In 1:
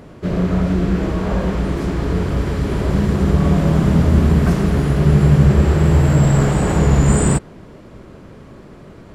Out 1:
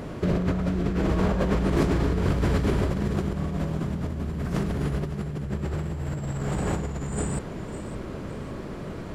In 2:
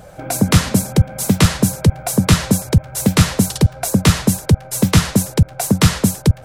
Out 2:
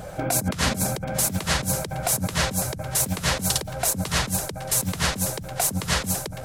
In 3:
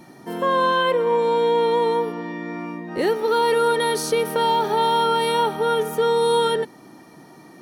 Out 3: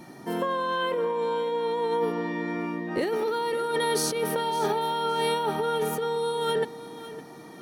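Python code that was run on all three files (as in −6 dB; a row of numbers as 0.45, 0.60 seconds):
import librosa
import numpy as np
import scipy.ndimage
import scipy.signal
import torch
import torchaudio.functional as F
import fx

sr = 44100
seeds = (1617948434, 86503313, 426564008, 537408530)

p1 = fx.over_compress(x, sr, threshold_db=-23.0, ratio=-1.0)
p2 = p1 + fx.echo_feedback(p1, sr, ms=559, feedback_pct=30, wet_db=-15.0, dry=0)
y = F.gain(torch.from_numpy(p2), -3.5).numpy()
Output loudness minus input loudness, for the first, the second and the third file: −12.0, −8.0, −7.0 LU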